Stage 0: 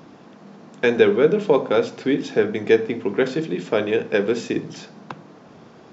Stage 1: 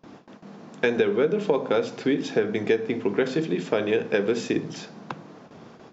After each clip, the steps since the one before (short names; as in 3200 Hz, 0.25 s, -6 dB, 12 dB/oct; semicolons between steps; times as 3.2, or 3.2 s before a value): gate with hold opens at -36 dBFS; compressor 6:1, threshold -18 dBFS, peak gain reduction 9.5 dB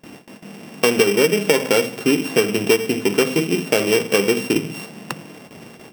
sample sorter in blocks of 16 samples; gain +6 dB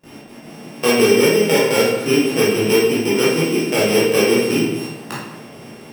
reverb RT60 0.95 s, pre-delay 12 ms, DRR -8.5 dB; gain -6.5 dB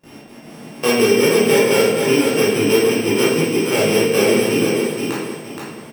feedback echo 0.473 s, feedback 30%, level -4.5 dB; gain -1 dB